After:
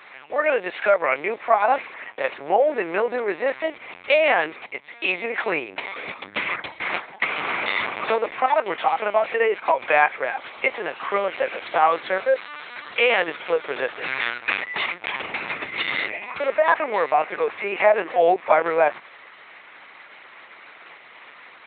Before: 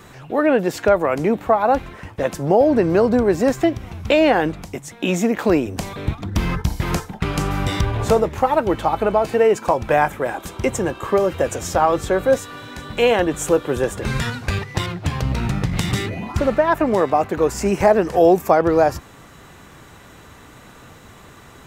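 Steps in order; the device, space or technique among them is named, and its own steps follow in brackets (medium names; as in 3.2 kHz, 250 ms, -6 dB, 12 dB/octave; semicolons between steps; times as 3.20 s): talking toy (LPC vocoder at 8 kHz pitch kept; high-pass 600 Hz 12 dB/octave; peaking EQ 2.2 kHz +10.5 dB 0.55 oct)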